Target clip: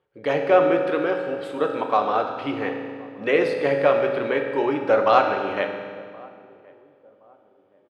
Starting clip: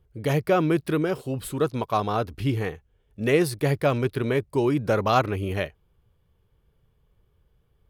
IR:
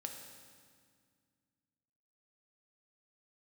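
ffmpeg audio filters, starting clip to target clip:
-filter_complex "[0:a]highpass=440,lowpass=2.8k,asplit=2[a][b];[b]adelay=1072,lowpass=f=810:p=1,volume=-22.5dB,asplit=2[c][d];[d]adelay=1072,lowpass=f=810:p=1,volume=0.38,asplit=2[e][f];[f]adelay=1072,lowpass=f=810:p=1,volume=0.38[g];[a][c][e][g]amix=inputs=4:normalize=0[h];[1:a]atrim=start_sample=2205[i];[h][i]afir=irnorm=-1:irlink=0,volume=8dB"

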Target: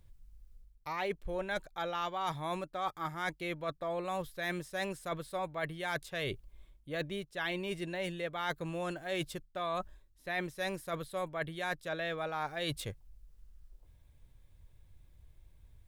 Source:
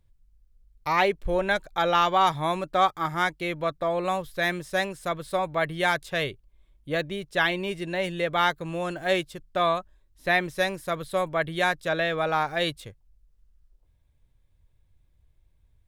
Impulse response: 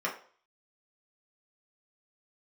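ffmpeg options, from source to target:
-af "highshelf=f=8.9k:g=3.5,areverse,acompressor=threshold=-40dB:ratio=5,areverse,volume=4.5dB"

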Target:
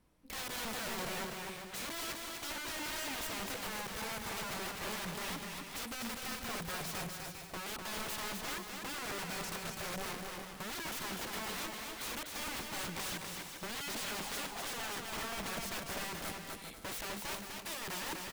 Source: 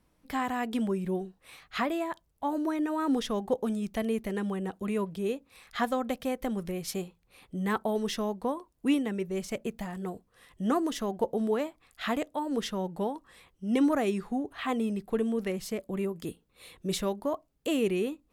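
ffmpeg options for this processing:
-filter_complex "[0:a]alimiter=limit=-24dB:level=0:latency=1:release=113,asoftclip=type=hard:threshold=-26dB,asettb=1/sr,asplit=3[a][b][c];[a]atrim=end=12.544[d];[b]atrim=start=12.54:end=15.04,asetpts=PTS-STARTPTS,afade=t=in:d=0.004:c=qsin,afade=t=out:st=2.496:d=0.004:c=qsin,lowpass=f=780:t=q:w=3.4[e];[c]atrim=start=15.036[f];[d][e]acrossfade=d=0.004:c1=hsin:c2=qsin[g];[g][f]acrossfade=d=0.004:c1=qsin:c2=hsin,aeval=exprs='(mod(53.1*val(0)+1,2)-1)/53.1':c=same,aecho=1:1:250|400|490|544|576.4:0.631|0.398|0.251|0.158|0.1,volume=-2dB"

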